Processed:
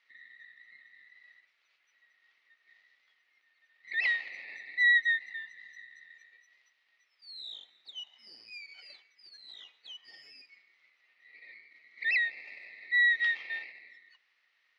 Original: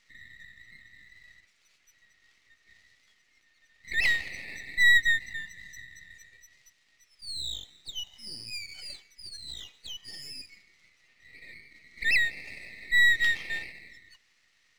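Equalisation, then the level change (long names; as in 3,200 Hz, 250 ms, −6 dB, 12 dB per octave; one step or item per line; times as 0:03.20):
Bessel high-pass filter 780 Hz, order 2
high-frequency loss of the air 270 metres
0.0 dB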